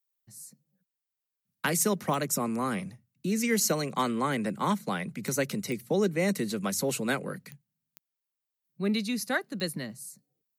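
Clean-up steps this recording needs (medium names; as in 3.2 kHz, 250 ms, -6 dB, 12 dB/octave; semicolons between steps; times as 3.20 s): clip repair -16.5 dBFS; de-click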